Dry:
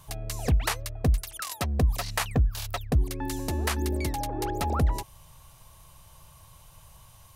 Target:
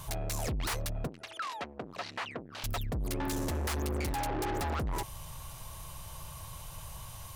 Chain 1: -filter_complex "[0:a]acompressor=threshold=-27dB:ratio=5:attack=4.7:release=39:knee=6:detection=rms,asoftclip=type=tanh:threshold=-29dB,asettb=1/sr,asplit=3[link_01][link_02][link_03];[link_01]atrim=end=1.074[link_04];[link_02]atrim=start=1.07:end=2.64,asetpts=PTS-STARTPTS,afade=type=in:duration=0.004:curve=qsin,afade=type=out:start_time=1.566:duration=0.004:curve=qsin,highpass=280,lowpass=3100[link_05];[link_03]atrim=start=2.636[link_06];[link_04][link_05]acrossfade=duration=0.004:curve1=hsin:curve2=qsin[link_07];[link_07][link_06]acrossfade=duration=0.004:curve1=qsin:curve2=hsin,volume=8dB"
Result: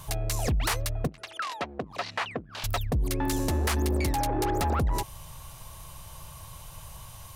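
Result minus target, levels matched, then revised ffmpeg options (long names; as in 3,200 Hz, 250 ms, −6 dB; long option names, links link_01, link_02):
soft clipping: distortion −8 dB
-filter_complex "[0:a]acompressor=threshold=-27dB:ratio=5:attack=4.7:release=39:knee=6:detection=rms,asoftclip=type=tanh:threshold=-39dB,asettb=1/sr,asplit=3[link_01][link_02][link_03];[link_01]atrim=end=1.074[link_04];[link_02]atrim=start=1.07:end=2.64,asetpts=PTS-STARTPTS,afade=type=in:duration=0.004:curve=qsin,afade=type=out:start_time=1.566:duration=0.004:curve=qsin,highpass=280,lowpass=3100[link_05];[link_03]atrim=start=2.636[link_06];[link_04][link_05]acrossfade=duration=0.004:curve1=hsin:curve2=qsin[link_07];[link_07][link_06]acrossfade=duration=0.004:curve1=qsin:curve2=hsin,volume=8dB"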